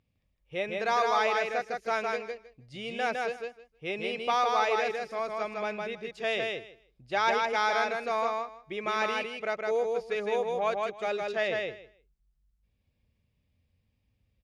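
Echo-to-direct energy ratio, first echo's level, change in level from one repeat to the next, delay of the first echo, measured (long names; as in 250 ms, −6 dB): −3.0 dB, −3.0 dB, −16.0 dB, 158 ms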